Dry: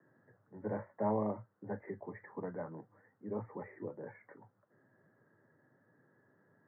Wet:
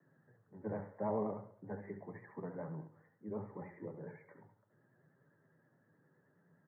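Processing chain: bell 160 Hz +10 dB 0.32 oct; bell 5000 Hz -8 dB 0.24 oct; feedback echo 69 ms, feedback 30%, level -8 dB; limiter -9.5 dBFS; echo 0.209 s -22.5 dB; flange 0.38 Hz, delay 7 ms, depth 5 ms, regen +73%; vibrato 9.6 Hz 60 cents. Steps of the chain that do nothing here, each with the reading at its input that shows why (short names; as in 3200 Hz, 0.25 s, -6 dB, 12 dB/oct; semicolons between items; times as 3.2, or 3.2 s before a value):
bell 5000 Hz: input band ends at 2000 Hz; limiter -9.5 dBFS: input peak -20.5 dBFS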